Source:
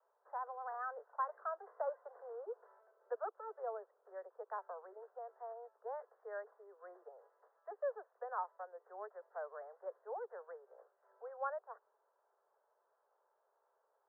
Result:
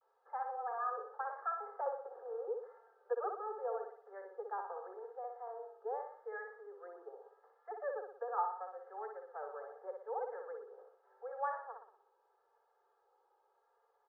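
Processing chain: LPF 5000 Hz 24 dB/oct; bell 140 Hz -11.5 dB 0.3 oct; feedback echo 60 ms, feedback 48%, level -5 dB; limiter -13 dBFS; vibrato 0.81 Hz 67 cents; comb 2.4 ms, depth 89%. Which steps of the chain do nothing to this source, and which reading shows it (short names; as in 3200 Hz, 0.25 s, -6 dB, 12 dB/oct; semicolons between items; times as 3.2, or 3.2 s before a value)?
LPF 5000 Hz: input band ends at 1900 Hz; bell 140 Hz: input band starts at 340 Hz; limiter -13 dBFS: input peak -26.0 dBFS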